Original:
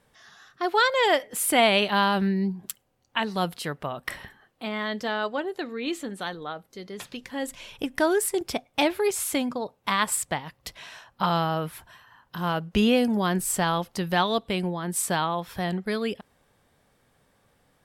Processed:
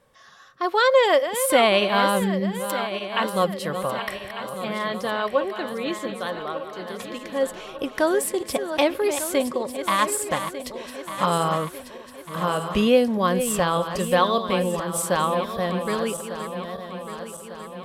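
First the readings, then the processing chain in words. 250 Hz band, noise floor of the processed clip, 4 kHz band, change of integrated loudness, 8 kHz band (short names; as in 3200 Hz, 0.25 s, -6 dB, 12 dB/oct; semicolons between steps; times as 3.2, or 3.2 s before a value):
+1.0 dB, -42 dBFS, +1.0 dB, +2.5 dB, +1.0 dB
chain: regenerating reverse delay 0.599 s, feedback 71%, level -9.5 dB; small resonant body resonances 540/1100 Hz, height 12 dB, ringing for 50 ms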